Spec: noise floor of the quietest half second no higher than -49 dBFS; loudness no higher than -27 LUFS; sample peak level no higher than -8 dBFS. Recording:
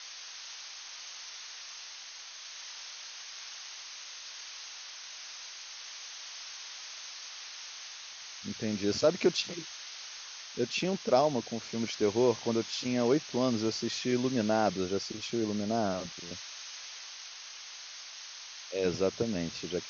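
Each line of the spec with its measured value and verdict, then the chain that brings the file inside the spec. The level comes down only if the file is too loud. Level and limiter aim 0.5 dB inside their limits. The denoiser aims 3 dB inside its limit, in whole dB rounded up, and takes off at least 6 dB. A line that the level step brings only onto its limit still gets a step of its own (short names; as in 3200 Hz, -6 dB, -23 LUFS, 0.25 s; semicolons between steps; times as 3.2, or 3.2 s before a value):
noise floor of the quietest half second -46 dBFS: fail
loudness -34.0 LUFS: OK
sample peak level -11.5 dBFS: OK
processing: denoiser 6 dB, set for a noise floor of -46 dBFS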